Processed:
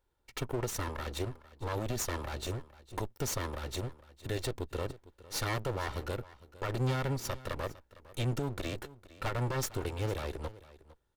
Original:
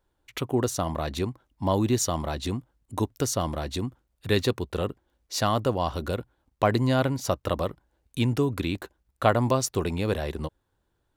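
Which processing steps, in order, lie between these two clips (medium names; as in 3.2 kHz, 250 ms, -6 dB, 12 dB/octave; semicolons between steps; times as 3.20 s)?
comb filter that takes the minimum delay 2.2 ms; peak limiter -20.5 dBFS, peak gain reduction 9.5 dB; on a send: delay 456 ms -18.5 dB; on the sum: trim -3.5 dB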